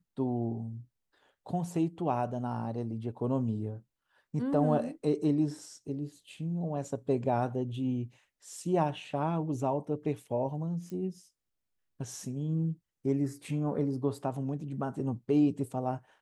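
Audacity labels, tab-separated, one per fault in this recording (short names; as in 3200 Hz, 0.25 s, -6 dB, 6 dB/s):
10.900000	10.900000	pop -30 dBFS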